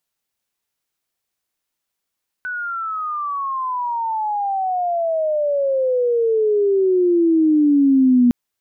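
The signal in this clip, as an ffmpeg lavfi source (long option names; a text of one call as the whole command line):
ffmpeg -f lavfi -i "aevalsrc='pow(10,(-23+13.5*t/5.86)/20)*sin(2*PI*1500*5.86/log(240/1500)*(exp(log(240/1500)*t/5.86)-1))':duration=5.86:sample_rate=44100" out.wav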